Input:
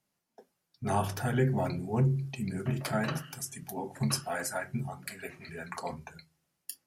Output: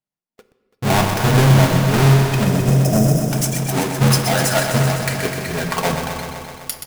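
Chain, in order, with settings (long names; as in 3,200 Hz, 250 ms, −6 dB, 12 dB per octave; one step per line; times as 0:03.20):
each half-wave held at its own peak
noise gate −47 dBFS, range −27 dB
in parallel at −0.5 dB: speech leveller within 4 dB 0.5 s
on the sum: time-frequency box erased 0:02.44–0:03.31, 770–4,900 Hz
hard clipping −17 dBFS, distortion −17 dB
on a send: single-tap delay 334 ms −17 dB
on the sum: rectangular room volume 1,600 cubic metres, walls mixed, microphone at 0.56 metres
feedback echo at a low word length 127 ms, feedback 80%, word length 8 bits, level −7 dB
level +5 dB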